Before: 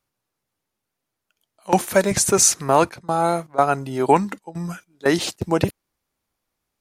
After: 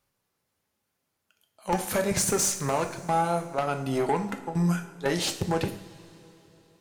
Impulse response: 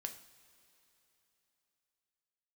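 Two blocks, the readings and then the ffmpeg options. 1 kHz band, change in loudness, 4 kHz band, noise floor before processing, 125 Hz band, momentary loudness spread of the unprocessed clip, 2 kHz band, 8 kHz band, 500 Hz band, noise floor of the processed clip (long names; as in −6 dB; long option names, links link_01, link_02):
−8.0 dB, −7.5 dB, −5.0 dB, −82 dBFS, −2.5 dB, 14 LU, −6.5 dB, −8.5 dB, −8.0 dB, −80 dBFS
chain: -filter_complex "[0:a]acompressor=threshold=-23dB:ratio=6,aeval=exprs='(tanh(12.6*val(0)+0.4)-tanh(0.4))/12.6':channel_layout=same[link_01];[1:a]atrim=start_sample=2205[link_02];[link_01][link_02]afir=irnorm=-1:irlink=0,volume=6.5dB"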